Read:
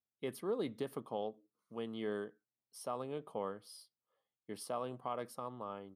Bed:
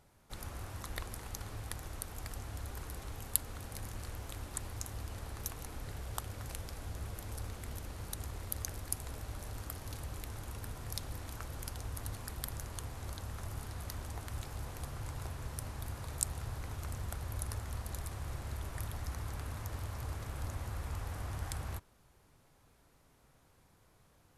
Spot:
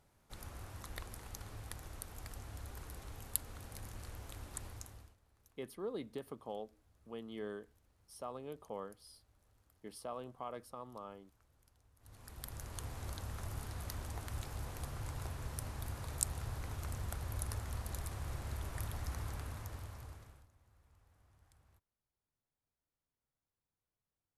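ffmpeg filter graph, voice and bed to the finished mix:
-filter_complex "[0:a]adelay=5350,volume=-4.5dB[a];[1:a]volume=22.5dB,afade=t=out:st=4.66:d=0.5:silence=0.0668344,afade=t=in:st=11.99:d=0.92:silence=0.0421697,afade=t=out:st=19.22:d=1.25:silence=0.0398107[b];[a][b]amix=inputs=2:normalize=0"

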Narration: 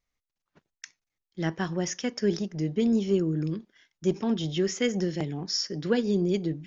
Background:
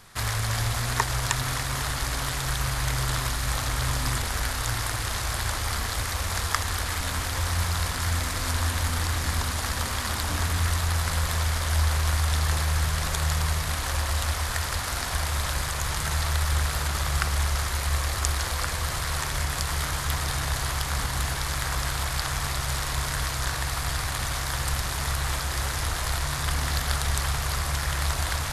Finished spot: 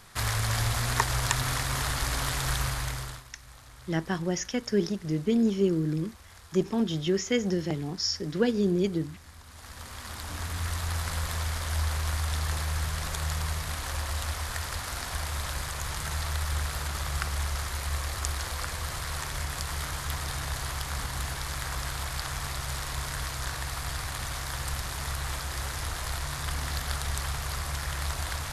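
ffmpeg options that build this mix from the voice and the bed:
-filter_complex "[0:a]adelay=2500,volume=0dB[a];[1:a]volume=16.5dB,afade=t=out:st=2.55:d=0.69:silence=0.0794328,afade=t=in:st=9.44:d=1.5:silence=0.133352[b];[a][b]amix=inputs=2:normalize=0"

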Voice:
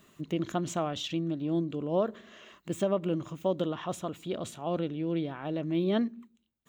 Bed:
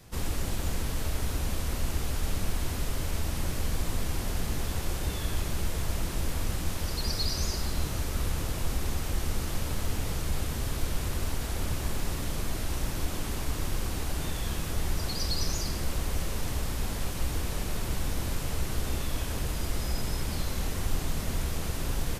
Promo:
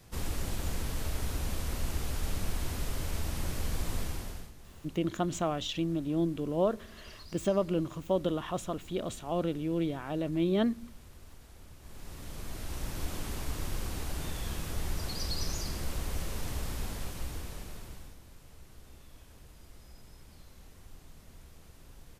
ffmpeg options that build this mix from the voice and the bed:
-filter_complex "[0:a]adelay=4650,volume=0dB[a];[1:a]volume=13.5dB,afade=t=out:st=3.99:d=0.53:silence=0.125893,afade=t=in:st=11.8:d=1.29:silence=0.141254,afade=t=out:st=16.74:d=1.45:silence=0.125893[b];[a][b]amix=inputs=2:normalize=0"

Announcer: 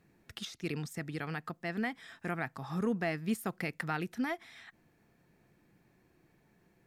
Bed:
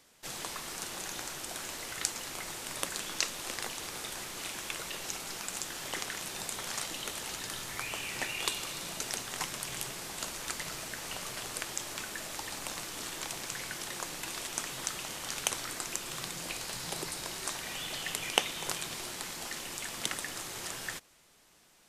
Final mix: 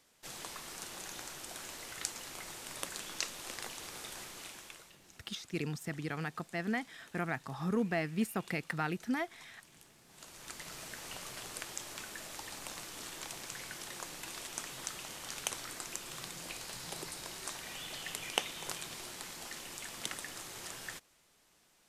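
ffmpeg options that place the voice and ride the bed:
-filter_complex "[0:a]adelay=4900,volume=0dB[a];[1:a]volume=11.5dB,afade=t=out:st=4.22:d=0.74:silence=0.141254,afade=t=in:st=10.06:d=0.8:silence=0.141254[b];[a][b]amix=inputs=2:normalize=0"

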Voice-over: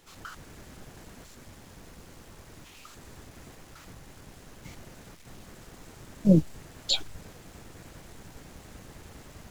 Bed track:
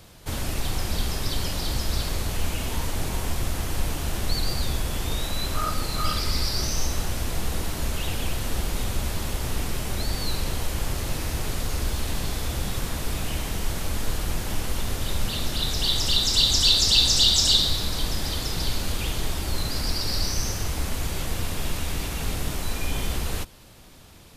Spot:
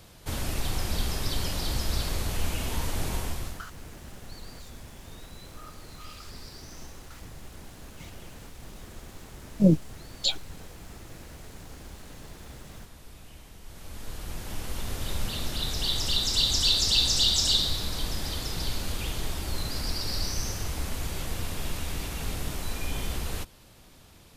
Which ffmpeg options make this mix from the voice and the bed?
-filter_complex "[0:a]adelay=3350,volume=0dB[a];[1:a]volume=13dB,afade=t=out:st=3.14:d=0.52:silence=0.133352,afade=t=in:st=13.63:d=1.45:silence=0.16788[b];[a][b]amix=inputs=2:normalize=0"

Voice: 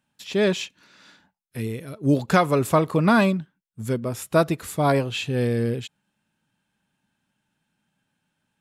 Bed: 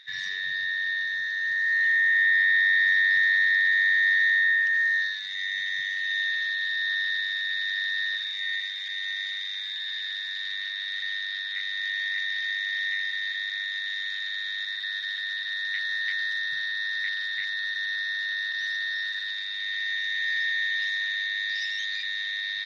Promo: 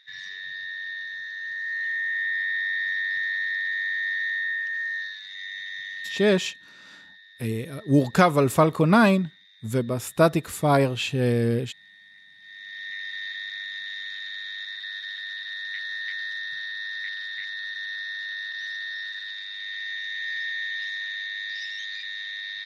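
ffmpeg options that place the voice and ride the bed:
-filter_complex "[0:a]adelay=5850,volume=0.5dB[a];[1:a]volume=13dB,afade=t=out:st=6.08:d=0.52:silence=0.149624,afade=t=in:st=12.39:d=0.81:silence=0.112202[b];[a][b]amix=inputs=2:normalize=0"

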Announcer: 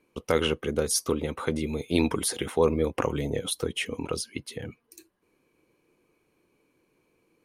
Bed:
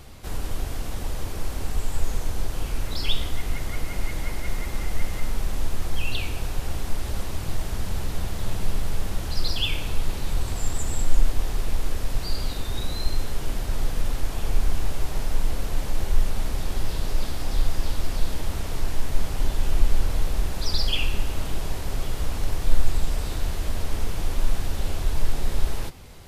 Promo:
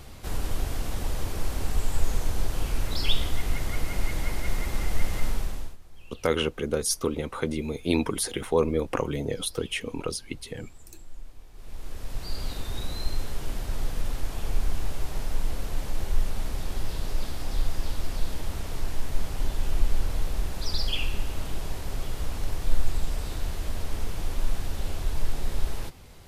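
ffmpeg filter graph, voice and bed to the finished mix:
-filter_complex "[0:a]adelay=5950,volume=-0.5dB[a];[1:a]volume=19.5dB,afade=t=out:st=5.27:d=0.5:silence=0.0668344,afade=t=in:st=11.53:d=0.99:silence=0.105925[b];[a][b]amix=inputs=2:normalize=0"

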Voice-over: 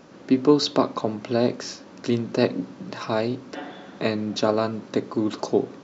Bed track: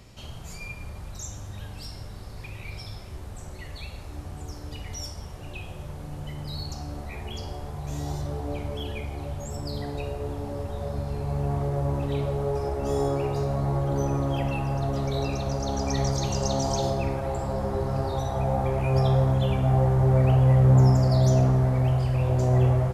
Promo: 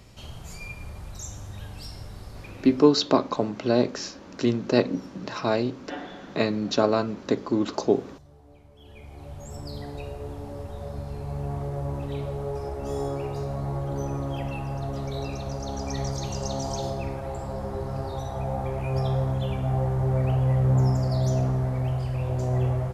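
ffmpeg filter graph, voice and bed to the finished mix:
-filter_complex "[0:a]adelay=2350,volume=0dB[a];[1:a]volume=16.5dB,afade=t=out:st=2.27:d=0.64:silence=0.0944061,afade=t=in:st=8.76:d=0.81:silence=0.141254[b];[a][b]amix=inputs=2:normalize=0"

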